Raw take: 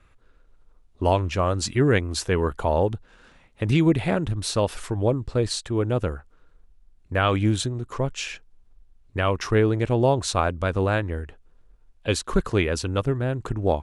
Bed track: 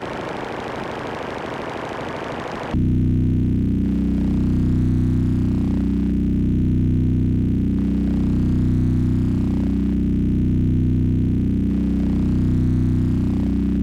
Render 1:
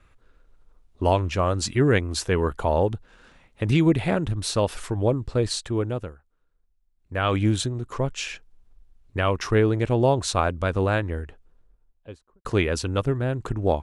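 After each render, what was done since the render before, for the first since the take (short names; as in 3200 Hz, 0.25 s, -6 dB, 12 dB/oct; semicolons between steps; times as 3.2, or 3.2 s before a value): 5.72–7.37 dip -15.5 dB, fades 0.43 s; 11.11–12.45 studio fade out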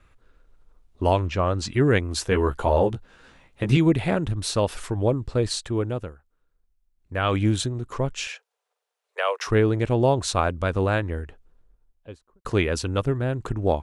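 1.28–1.74 air absorption 73 m; 2.3–3.77 doubler 15 ms -4 dB; 8.27–9.47 steep high-pass 440 Hz 72 dB/oct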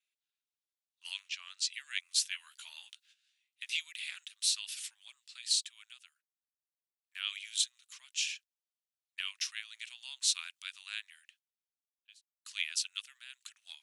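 gate -45 dBFS, range -15 dB; inverse Chebyshev high-pass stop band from 460 Hz, stop band 80 dB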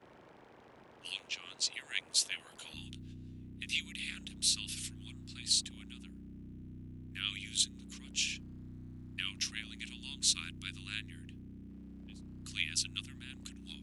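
add bed track -31 dB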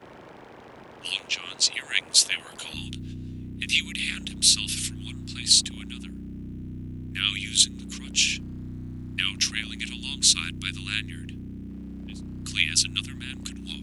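gain +12 dB; limiter -1 dBFS, peak gain reduction 2 dB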